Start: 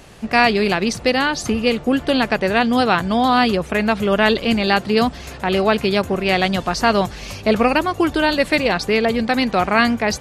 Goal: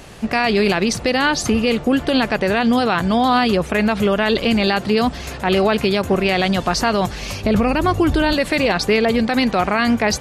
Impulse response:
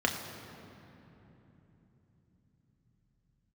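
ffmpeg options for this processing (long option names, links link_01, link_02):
-filter_complex "[0:a]asettb=1/sr,asplit=3[link_01][link_02][link_03];[link_01]atrim=end=7.444[link_04];[link_02]atrim=start=7.44:end=8.33,asetpts=PTS-STARTPTS,afade=type=in:duration=0.004:curve=qsin,afade=type=out:start_time=0.886:duration=0.004:curve=qsin,lowshelf=frequency=200:gain=12[link_05];[link_03]atrim=start=8.326[link_06];[link_04][link_05]acrossfade=duration=0.004:curve1=hsin:curve2=qsin[link_07];[link_07][link_06]acrossfade=duration=0.004:curve1=qsin:curve2=hsin,alimiter=level_in=10.5dB:limit=-1dB:release=50:level=0:latency=1,volume=-6.5dB"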